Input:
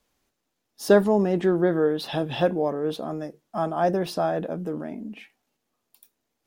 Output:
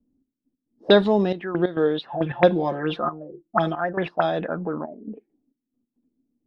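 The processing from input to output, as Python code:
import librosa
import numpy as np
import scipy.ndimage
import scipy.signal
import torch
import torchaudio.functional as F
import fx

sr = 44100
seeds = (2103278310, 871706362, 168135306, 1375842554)

y = fx.comb(x, sr, ms=5.7, depth=0.77, at=(2.1, 3.93))
y = fx.step_gate(y, sr, bpm=136, pattern='xx..x.xxxxxx..x.', floor_db=-12.0, edge_ms=4.5)
y = fx.envelope_lowpass(y, sr, base_hz=260.0, top_hz=3800.0, q=7.3, full_db=-21.0, direction='up')
y = F.gain(torch.from_numpy(y), 1.0).numpy()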